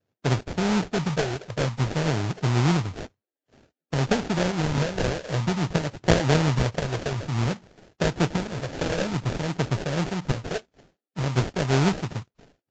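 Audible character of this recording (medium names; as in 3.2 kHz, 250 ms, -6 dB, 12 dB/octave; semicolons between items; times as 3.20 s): phasing stages 12, 0.54 Hz, lowest notch 210–3600 Hz; aliases and images of a low sample rate 1.1 kHz, jitter 20%; Vorbis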